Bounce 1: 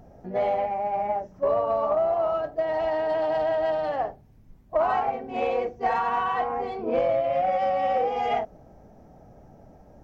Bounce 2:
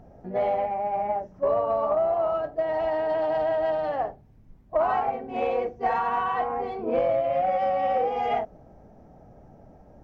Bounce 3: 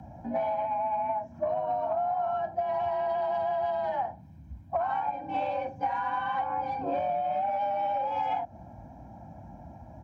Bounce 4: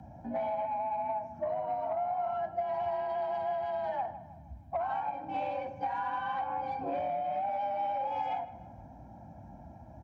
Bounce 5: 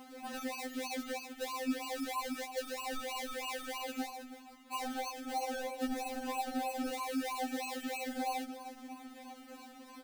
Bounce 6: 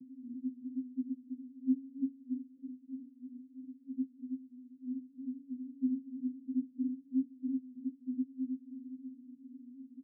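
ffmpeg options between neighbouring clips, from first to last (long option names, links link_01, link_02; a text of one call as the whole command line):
ffmpeg -i in.wav -af "highshelf=frequency=4000:gain=-8" out.wav
ffmpeg -i in.wav -af "aecho=1:1:1.3:0.96,acompressor=threshold=-27dB:ratio=6,afreqshift=48" out.wav
ffmpeg -i in.wav -filter_complex "[0:a]asoftclip=type=tanh:threshold=-18.5dB,asplit=2[link_01][link_02];[link_02]adelay=157,lowpass=frequency=2700:poles=1,volume=-14dB,asplit=2[link_03][link_04];[link_04]adelay=157,lowpass=frequency=2700:poles=1,volume=0.5,asplit=2[link_05][link_06];[link_06]adelay=157,lowpass=frequency=2700:poles=1,volume=0.5,asplit=2[link_07][link_08];[link_08]adelay=157,lowpass=frequency=2700:poles=1,volume=0.5,asplit=2[link_09][link_10];[link_10]adelay=157,lowpass=frequency=2700:poles=1,volume=0.5[link_11];[link_01][link_03][link_05][link_07][link_09][link_11]amix=inputs=6:normalize=0,volume=-3.5dB" out.wav
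ffmpeg -i in.wav -af "acrusher=samples=35:mix=1:aa=0.000001:lfo=1:lforange=21:lforate=3.1,acompressor=threshold=-40dB:ratio=2.5,afftfilt=real='re*3.46*eq(mod(b,12),0)':imag='im*3.46*eq(mod(b,12),0)':win_size=2048:overlap=0.75,volume=4dB" out.wav
ffmpeg -i in.wav -af "asuperpass=centerf=200:order=20:qfactor=0.91,aecho=1:1:328:0.376,volume=4.5dB" out.wav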